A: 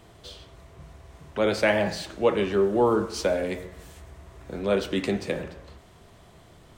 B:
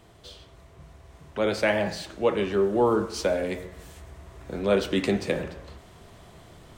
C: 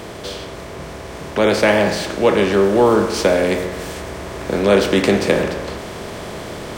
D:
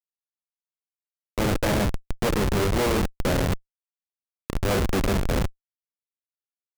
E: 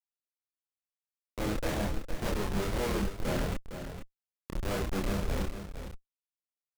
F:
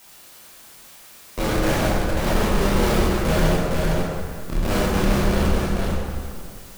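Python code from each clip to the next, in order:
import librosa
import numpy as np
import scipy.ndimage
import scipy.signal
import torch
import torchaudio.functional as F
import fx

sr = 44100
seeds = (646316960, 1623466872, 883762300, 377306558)

y1 = fx.rider(x, sr, range_db=10, speed_s=2.0)
y2 = fx.bin_compress(y1, sr, power=0.6)
y2 = fx.high_shelf(y2, sr, hz=9200.0, db=4.5)
y2 = F.gain(torch.from_numpy(y2), 6.5).numpy()
y3 = fx.hum_notches(y2, sr, base_hz=60, count=2)
y3 = fx.schmitt(y3, sr, flips_db=-12.0)
y3 = F.gain(torch.from_numpy(y3), -3.5).numpy()
y4 = fx.chorus_voices(y3, sr, voices=6, hz=0.62, base_ms=28, depth_ms=3.6, mix_pct=45)
y4 = y4 + 10.0 ** (-9.5 / 20.0) * np.pad(y4, (int(458 * sr / 1000.0), 0))[:len(y4)]
y4 = F.gain(torch.from_numpy(y4), -6.5).numpy()
y5 = fx.power_curve(y4, sr, exponent=0.35)
y5 = fx.rev_plate(y5, sr, seeds[0], rt60_s=2.2, hf_ratio=0.6, predelay_ms=0, drr_db=-4.5)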